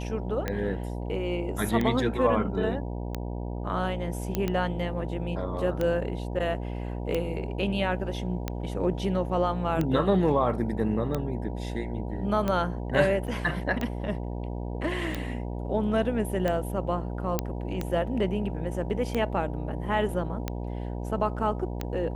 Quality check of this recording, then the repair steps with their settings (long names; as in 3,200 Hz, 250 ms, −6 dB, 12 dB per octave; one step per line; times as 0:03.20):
mains buzz 60 Hz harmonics 16 −33 dBFS
scratch tick 45 rpm −15 dBFS
0:04.35: click −13 dBFS
0:13.27–0:13.28: drop-out 6.9 ms
0:17.39: click −11 dBFS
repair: click removal
hum removal 60 Hz, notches 16
repair the gap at 0:13.27, 6.9 ms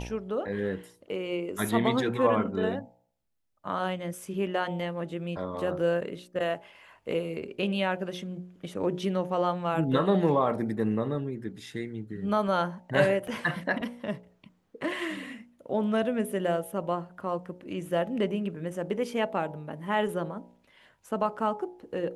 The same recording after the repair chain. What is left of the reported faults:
none of them is left